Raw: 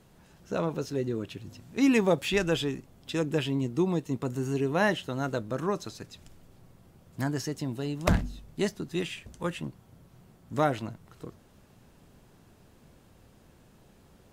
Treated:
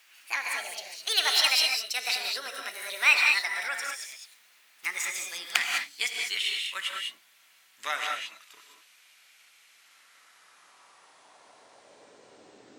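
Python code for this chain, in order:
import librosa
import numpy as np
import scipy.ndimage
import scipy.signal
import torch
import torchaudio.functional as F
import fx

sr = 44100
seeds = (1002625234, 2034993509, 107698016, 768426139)

y = fx.speed_glide(x, sr, from_pct=171, to_pct=53)
y = fx.rev_gated(y, sr, seeds[0], gate_ms=230, shape='rising', drr_db=1.0)
y = fx.filter_sweep_highpass(y, sr, from_hz=2200.0, to_hz=340.0, start_s=9.67, end_s=12.84, q=1.8)
y = y * 10.0 ** (5.5 / 20.0)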